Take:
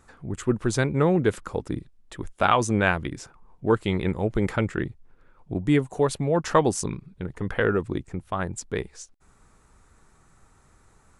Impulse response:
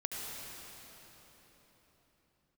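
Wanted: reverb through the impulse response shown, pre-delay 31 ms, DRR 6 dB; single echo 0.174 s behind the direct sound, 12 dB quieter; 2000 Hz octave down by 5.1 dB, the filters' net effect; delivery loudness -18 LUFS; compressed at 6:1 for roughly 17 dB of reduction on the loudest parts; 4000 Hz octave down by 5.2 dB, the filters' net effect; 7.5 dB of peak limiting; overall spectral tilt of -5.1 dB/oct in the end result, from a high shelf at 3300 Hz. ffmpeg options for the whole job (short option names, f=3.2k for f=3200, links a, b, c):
-filter_complex "[0:a]equalizer=f=2k:t=o:g=-7,highshelf=f=3.3k:g=4,equalizer=f=4k:t=o:g=-7.5,acompressor=threshold=-35dB:ratio=6,alimiter=level_in=5dB:limit=-24dB:level=0:latency=1,volume=-5dB,aecho=1:1:174:0.251,asplit=2[a][b];[1:a]atrim=start_sample=2205,adelay=31[c];[b][c]afir=irnorm=-1:irlink=0,volume=-8.5dB[d];[a][d]amix=inputs=2:normalize=0,volume=23dB"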